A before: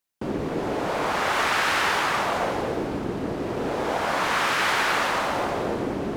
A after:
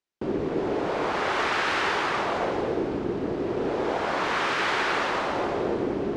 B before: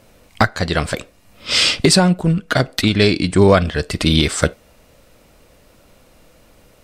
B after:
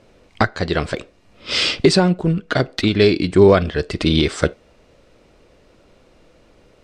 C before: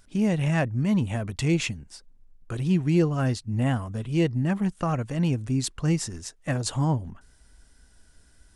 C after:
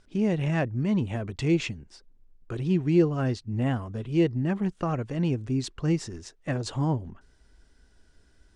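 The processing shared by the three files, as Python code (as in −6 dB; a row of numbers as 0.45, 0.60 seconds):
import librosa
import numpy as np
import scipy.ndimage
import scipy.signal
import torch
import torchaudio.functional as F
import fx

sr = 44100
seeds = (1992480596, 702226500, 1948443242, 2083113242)

y = scipy.signal.sosfilt(scipy.signal.butter(2, 5600.0, 'lowpass', fs=sr, output='sos'), x)
y = fx.peak_eq(y, sr, hz=380.0, db=6.5, octaves=0.68)
y = F.gain(torch.from_numpy(y), -3.0).numpy()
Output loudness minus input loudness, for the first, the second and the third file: −2.0, −1.5, −1.5 LU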